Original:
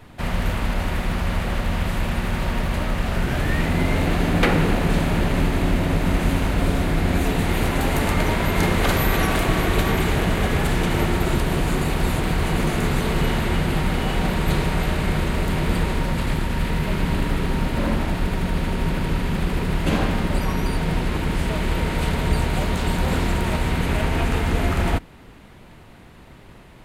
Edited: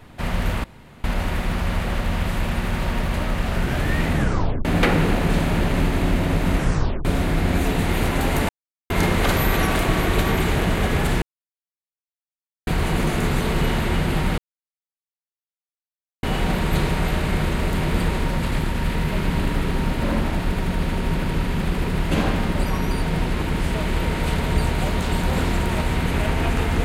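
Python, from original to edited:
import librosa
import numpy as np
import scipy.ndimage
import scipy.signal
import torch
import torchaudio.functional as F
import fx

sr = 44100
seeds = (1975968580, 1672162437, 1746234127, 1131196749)

y = fx.edit(x, sr, fx.insert_room_tone(at_s=0.64, length_s=0.4),
    fx.tape_stop(start_s=3.72, length_s=0.53),
    fx.tape_stop(start_s=6.16, length_s=0.49),
    fx.silence(start_s=8.09, length_s=0.41),
    fx.silence(start_s=10.82, length_s=1.45),
    fx.insert_silence(at_s=13.98, length_s=1.85), tone=tone)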